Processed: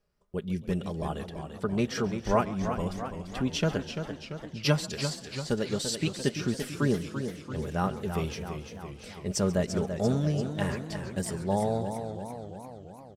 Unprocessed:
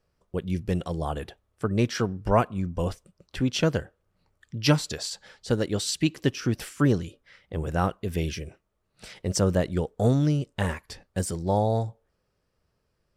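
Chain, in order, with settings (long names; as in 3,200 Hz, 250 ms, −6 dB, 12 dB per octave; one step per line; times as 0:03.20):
comb filter 4.9 ms, depth 44%
on a send: echo with shifted repeats 137 ms, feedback 58%, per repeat +34 Hz, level −19 dB
on the sum: feedback echo with a swinging delay time 339 ms, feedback 61%, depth 105 cents, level −8 dB
level −4.5 dB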